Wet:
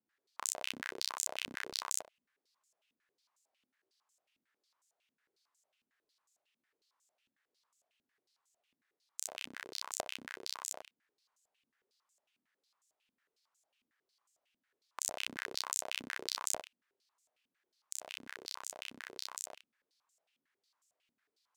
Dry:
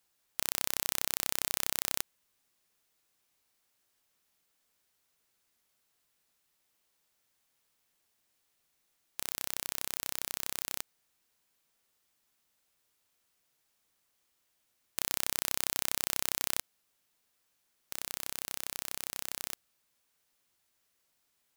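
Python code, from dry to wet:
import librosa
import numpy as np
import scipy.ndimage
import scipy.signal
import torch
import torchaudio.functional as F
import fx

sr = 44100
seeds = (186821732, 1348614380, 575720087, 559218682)

y = fx.room_early_taps(x, sr, ms=(44, 73), db=(-15.0, -16.0))
y = fx.filter_held_bandpass(y, sr, hz=11.0, low_hz=250.0, high_hz=7200.0)
y = y * 10.0 ** (8.0 / 20.0)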